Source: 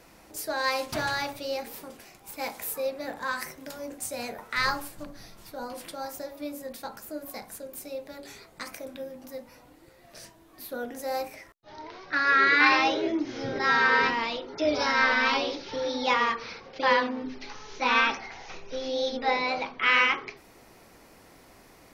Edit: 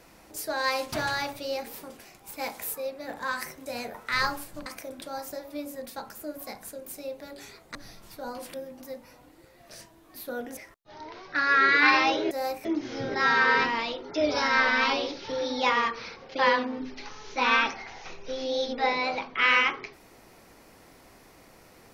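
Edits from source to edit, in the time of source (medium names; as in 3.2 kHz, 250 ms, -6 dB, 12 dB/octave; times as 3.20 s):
2.75–3.09 s: gain -3.5 dB
3.66–4.10 s: delete
5.10–5.89 s: swap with 8.62–8.98 s
11.01–11.35 s: move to 13.09 s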